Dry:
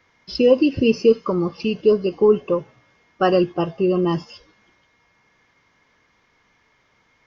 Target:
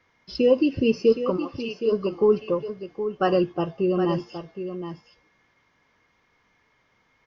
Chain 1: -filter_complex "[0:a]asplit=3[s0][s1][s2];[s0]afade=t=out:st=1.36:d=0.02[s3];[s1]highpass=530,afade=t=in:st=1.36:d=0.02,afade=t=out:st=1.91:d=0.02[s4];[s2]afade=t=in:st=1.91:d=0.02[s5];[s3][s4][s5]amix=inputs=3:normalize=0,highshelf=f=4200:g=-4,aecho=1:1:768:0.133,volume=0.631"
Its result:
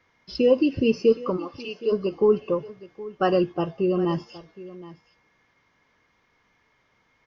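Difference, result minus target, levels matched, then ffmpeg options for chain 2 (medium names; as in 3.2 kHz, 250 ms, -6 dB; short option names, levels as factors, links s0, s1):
echo-to-direct -8 dB
-filter_complex "[0:a]asplit=3[s0][s1][s2];[s0]afade=t=out:st=1.36:d=0.02[s3];[s1]highpass=530,afade=t=in:st=1.36:d=0.02,afade=t=out:st=1.91:d=0.02[s4];[s2]afade=t=in:st=1.91:d=0.02[s5];[s3][s4][s5]amix=inputs=3:normalize=0,highshelf=f=4200:g=-4,aecho=1:1:768:0.335,volume=0.631"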